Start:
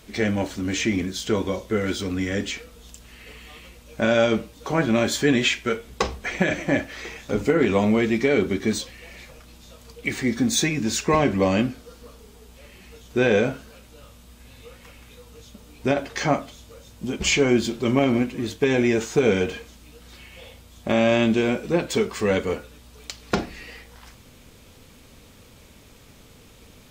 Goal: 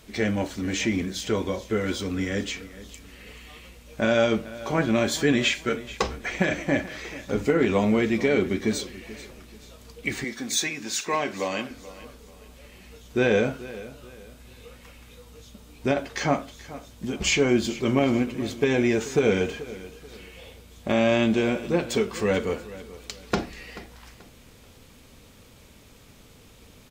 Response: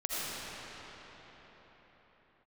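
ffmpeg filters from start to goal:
-filter_complex "[0:a]asettb=1/sr,asplit=3[link_01][link_02][link_03];[link_01]atrim=end=10.244[link_04];[link_02]atrim=start=10.24:end=11.71,asetpts=PTS-STARTPTS,afade=type=in:duration=0.004:curve=qsin,afade=type=out:start_time=1.466:duration=0.004:curve=qsin,highpass=frequency=830:poles=1[link_05];[link_03]atrim=start=11.706[link_06];[link_04][link_05]acrossfade=duration=0.004:curve1=hsin:curve2=qsin[link_07];[link_07][link_06]acrossfade=duration=0.004:curve1=qsin:curve2=hsin,aecho=1:1:434|868|1302:0.141|0.048|0.0163,volume=-2dB"

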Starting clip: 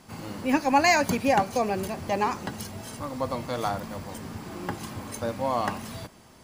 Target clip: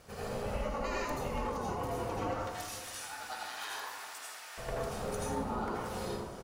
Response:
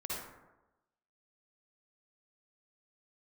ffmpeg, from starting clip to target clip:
-filter_complex "[0:a]asettb=1/sr,asplit=3[link_01][link_02][link_03];[link_01]atrim=end=2.374[link_04];[link_02]atrim=start=2.37:end=4.58,asetpts=PTS-STARTPTS,afade=type=in:duration=0.004:curve=qsin,afade=type=out:start_time=2.206:duration=0.004:curve=qsin,highpass=frequency=1400:width=0.5412,highpass=frequency=1400:width=1.3066[link_05];[link_03]atrim=start=4.576[link_06];[link_04][link_05]acrossfade=duration=0.004:curve1=hsin:curve2=qsin[link_07];[link_07][link_06]acrossfade=duration=0.004:curve1=qsin:curve2=hsin,acompressor=threshold=-37dB:ratio=8,aeval=exprs='val(0)*sin(2*PI*310*n/s)':channel_layout=same,asplit=2[link_08][link_09];[link_09]adelay=510,lowpass=frequency=2000:poles=1,volume=-17.5dB,asplit=2[link_10][link_11];[link_11]adelay=510,lowpass=frequency=2000:poles=1,volume=0.41,asplit=2[link_12][link_13];[link_13]adelay=510,lowpass=frequency=2000:poles=1,volume=0.41[link_14];[link_08][link_10][link_12][link_14]amix=inputs=4:normalize=0[link_15];[1:a]atrim=start_sample=2205,asetrate=29988,aresample=44100[link_16];[link_15][link_16]afir=irnorm=-1:irlink=0,volume=2dB"

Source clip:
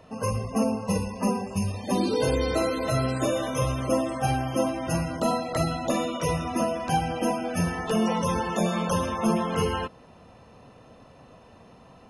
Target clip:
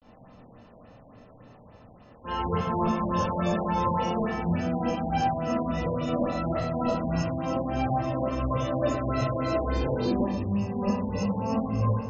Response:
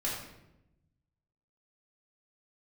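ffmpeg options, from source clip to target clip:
-filter_complex "[0:a]areverse[link_01];[1:a]atrim=start_sample=2205[link_02];[link_01][link_02]afir=irnorm=-1:irlink=0,afftfilt=real='re*lt(b*sr/1024,980*pow(7800/980,0.5+0.5*sin(2*PI*3.5*pts/sr)))':imag='im*lt(b*sr/1024,980*pow(7800/980,0.5+0.5*sin(2*PI*3.5*pts/sr)))':win_size=1024:overlap=0.75,volume=-6.5dB"

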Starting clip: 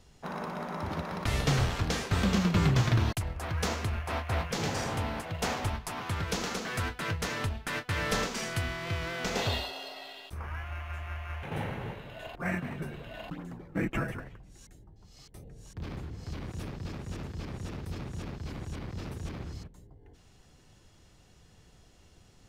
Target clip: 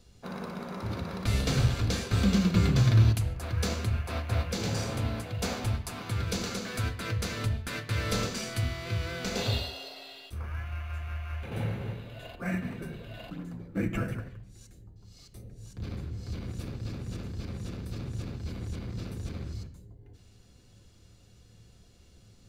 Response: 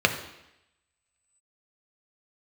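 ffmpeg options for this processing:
-filter_complex "[0:a]equalizer=frequency=970:width=0.34:gain=-10.5,asplit=2[link_01][link_02];[1:a]atrim=start_sample=2205,afade=type=out:start_time=0.2:duration=0.01,atrim=end_sample=9261[link_03];[link_02][link_03]afir=irnorm=-1:irlink=0,volume=-12.5dB[link_04];[link_01][link_04]amix=inputs=2:normalize=0"

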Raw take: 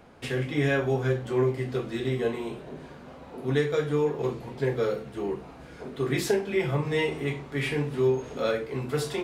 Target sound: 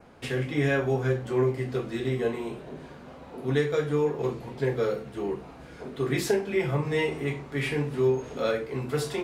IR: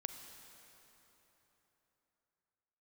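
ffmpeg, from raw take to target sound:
-af "adynamicequalizer=threshold=0.002:dfrequency=3400:dqfactor=3:tfrequency=3400:tqfactor=3:attack=5:release=100:ratio=0.375:range=2:mode=cutabove:tftype=bell"

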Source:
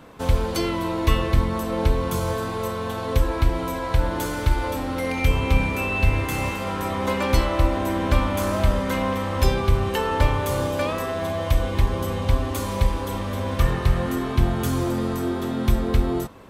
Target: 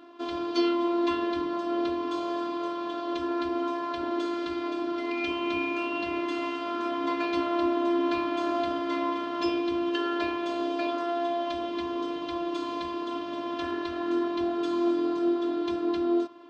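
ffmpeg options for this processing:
ffmpeg -i in.wav -af "afftfilt=real='hypot(re,im)*cos(PI*b)':imag='0':win_size=512:overlap=0.75,highpass=240,equalizer=frequency=290:width_type=q:width=4:gain=9,equalizer=frequency=890:width_type=q:width=4:gain=-3,equalizer=frequency=2000:width_type=q:width=4:gain=-8,lowpass=frequency=4700:width=0.5412,lowpass=frequency=4700:width=1.3066" out.wav

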